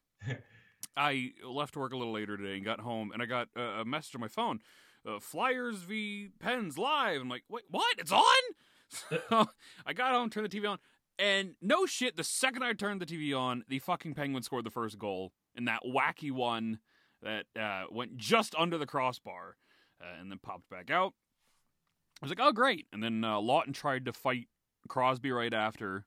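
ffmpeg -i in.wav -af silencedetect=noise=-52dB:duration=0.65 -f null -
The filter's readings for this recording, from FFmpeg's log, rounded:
silence_start: 21.10
silence_end: 22.16 | silence_duration: 1.06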